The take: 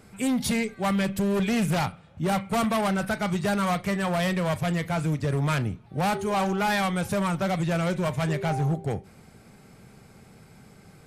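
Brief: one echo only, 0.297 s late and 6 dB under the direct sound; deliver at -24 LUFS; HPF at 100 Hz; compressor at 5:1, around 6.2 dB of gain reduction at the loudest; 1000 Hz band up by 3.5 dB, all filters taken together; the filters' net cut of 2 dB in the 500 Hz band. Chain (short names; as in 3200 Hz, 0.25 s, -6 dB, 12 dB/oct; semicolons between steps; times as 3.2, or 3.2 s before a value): HPF 100 Hz; bell 500 Hz -5 dB; bell 1000 Hz +6.5 dB; compressor 5:1, threshold -26 dBFS; echo 0.297 s -6 dB; gain +5.5 dB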